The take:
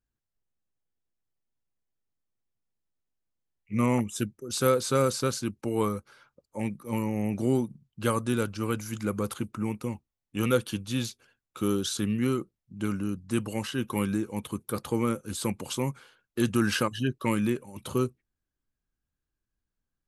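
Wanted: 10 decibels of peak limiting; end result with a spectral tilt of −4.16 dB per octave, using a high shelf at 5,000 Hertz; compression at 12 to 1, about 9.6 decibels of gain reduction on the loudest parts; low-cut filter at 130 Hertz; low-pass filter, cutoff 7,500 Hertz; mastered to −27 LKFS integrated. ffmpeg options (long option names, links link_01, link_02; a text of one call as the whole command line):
ffmpeg -i in.wav -af "highpass=130,lowpass=7500,highshelf=frequency=5000:gain=8.5,acompressor=threshold=-28dB:ratio=12,volume=11.5dB,alimiter=limit=-16dB:level=0:latency=1" out.wav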